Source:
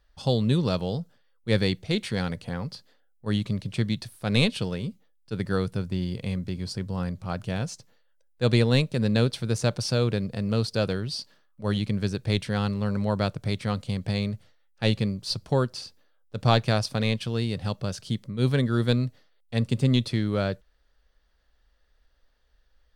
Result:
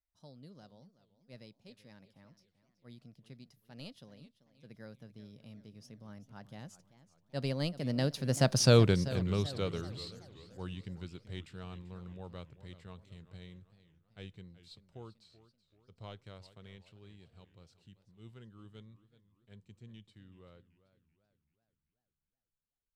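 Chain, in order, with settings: Doppler pass-by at 8.71, 44 m/s, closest 9.8 m; warbling echo 0.383 s, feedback 47%, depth 165 cents, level -16 dB; gain +2 dB

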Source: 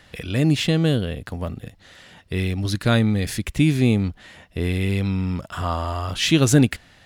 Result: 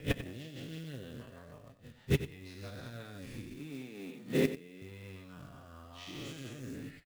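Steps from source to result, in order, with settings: spectral dilation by 0.48 s; LPF 3900 Hz 6 dB/oct; gate -24 dBFS, range -21 dB; 3.55–4.82 HPF 170 Hz 24 dB/oct; limiter -7.5 dBFS, peak gain reduction 9.5 dB; flipped gate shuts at -15 dBFS, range -28 dB; rotary speaker horn 6.3 Hz, later 0.9 Hz, at 2.67; flange 1.3 Hz, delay 6.6 ms, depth 1.8 ms, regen +35%; short-mantissa float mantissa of 2-bit; echo 93 ms -12.5 dB; gain +5 dB

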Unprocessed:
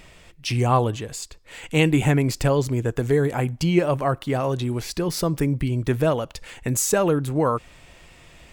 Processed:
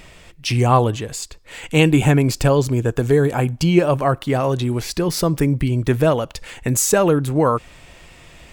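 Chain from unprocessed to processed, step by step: 1.76–4.02 notch 2000 Hz, Q 10; gain +4.5 dB

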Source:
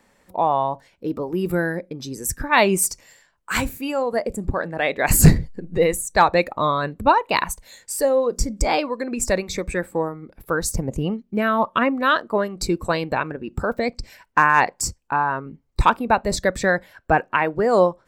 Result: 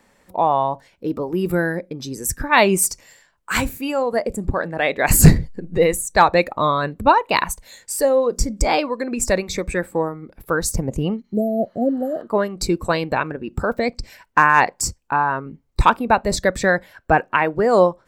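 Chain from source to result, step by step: spectral repair 11.27–12.18, 790–7000 Hz both; gain +2 dB

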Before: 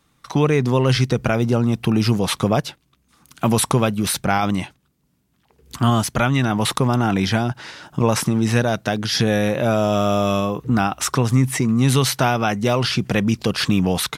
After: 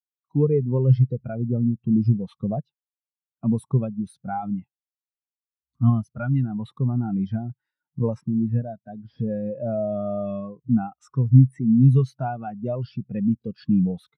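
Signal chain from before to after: 8.21–9.46 CVSD 32 kbps; spectral expander 2.5:1

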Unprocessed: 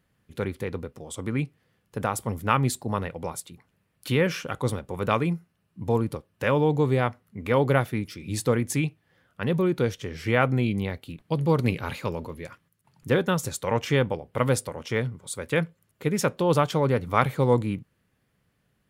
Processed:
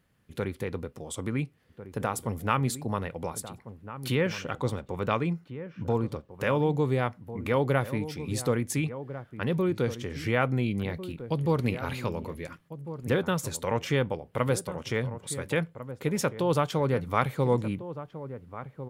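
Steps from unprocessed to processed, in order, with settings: 4.15–6.31 bell 11000 Hz -12.5 dB 0.55 oct; in parallel at 0 dB: compressor, threshold -32 dBFS, peak gain reduction 16.5 dB; on the sum: outdoor echo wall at 240 m, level -12 dB; gain -5.5 dB

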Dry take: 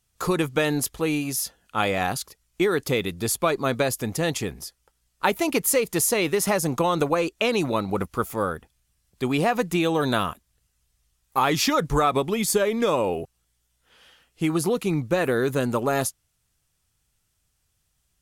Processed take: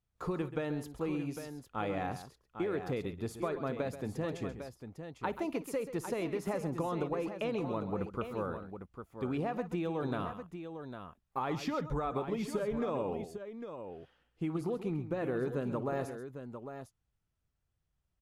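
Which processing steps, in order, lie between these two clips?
LPF 1000 Hz 6 dB/oct; compressor, threshold -22 dBFS, peak gain reduction 5.5 dB; tapped delay 56/133/802 ms -19/-12/-9 dB; gain -8.5 dB

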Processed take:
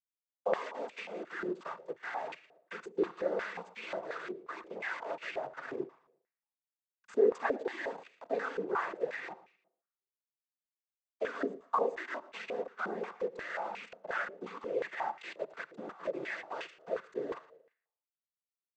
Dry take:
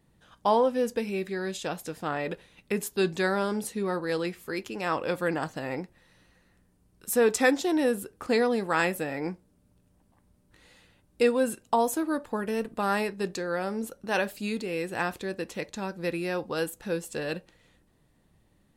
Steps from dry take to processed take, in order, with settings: in parallel at +0.5 dB: compressor, threshold -35 dBFS, peak gain reduction 17 dB; on the sum: bit-crush 5-bit; noise vocoder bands 16; feedback echo 0.115 s, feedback 35%, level -18 dB; on a send at -19 dB: reverb RT60 0.80 s, pre-delay 44 ms; on the sum: stepped band-pass 5.6 Hz 390–2400 Hz; gain -1.5 dB

